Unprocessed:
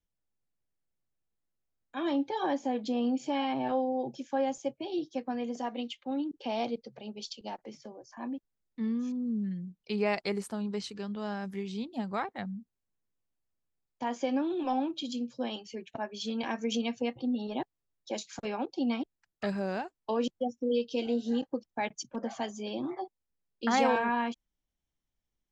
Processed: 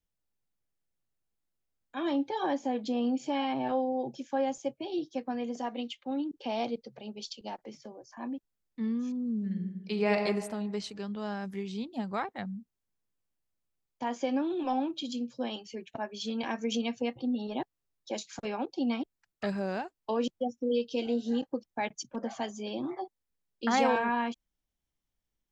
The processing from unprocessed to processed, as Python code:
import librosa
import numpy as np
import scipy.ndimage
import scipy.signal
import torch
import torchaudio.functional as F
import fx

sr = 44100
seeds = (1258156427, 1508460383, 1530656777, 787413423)

y = fx.reverb_throw(x, sr, start_s=9.35, length_s=0.88, rt60_s=1.3, drr_db=4.0)